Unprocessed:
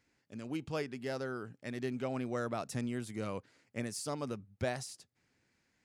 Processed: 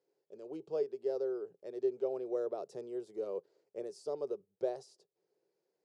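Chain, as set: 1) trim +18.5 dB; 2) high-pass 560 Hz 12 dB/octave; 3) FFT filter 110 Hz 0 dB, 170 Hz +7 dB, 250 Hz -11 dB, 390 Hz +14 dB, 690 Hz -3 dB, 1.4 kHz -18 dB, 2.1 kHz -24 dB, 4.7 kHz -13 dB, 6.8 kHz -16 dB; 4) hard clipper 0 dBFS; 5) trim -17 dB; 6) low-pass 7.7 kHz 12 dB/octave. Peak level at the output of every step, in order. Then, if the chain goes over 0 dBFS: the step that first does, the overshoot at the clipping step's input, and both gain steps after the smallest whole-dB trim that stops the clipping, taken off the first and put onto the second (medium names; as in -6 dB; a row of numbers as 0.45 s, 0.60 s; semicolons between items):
-3.5 dBFS, -3.5 dBFS, -5.0 dBFS, -5.0 dBFS, -22.0 dBFS, -22.0 dBFS; nothing clips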